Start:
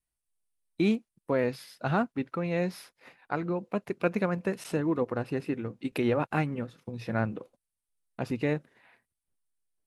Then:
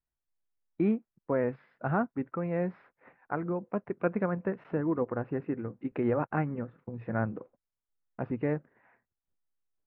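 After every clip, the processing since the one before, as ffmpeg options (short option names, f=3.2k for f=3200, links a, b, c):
-af "lowpass=f=1.8k:w=0.5412,lowpass=f=1.8k:w=1.3066,volume=-1.5dB"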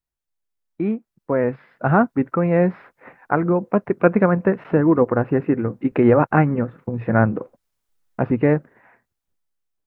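-af "dynaudnorm=f=340:g=9:m=13dB,volume=2dB"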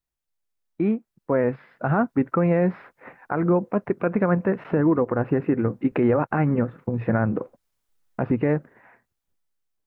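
-af "alimiter=limit=-11.5dB:level=0:latency=1:release=90"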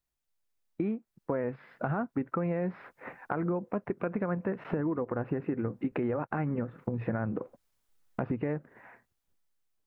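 -af "acompressor=threshold=-30dB:ratio=4"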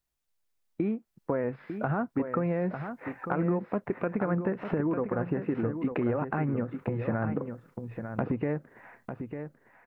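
-af "aecho=1:1:899:0.398,volume=2dB"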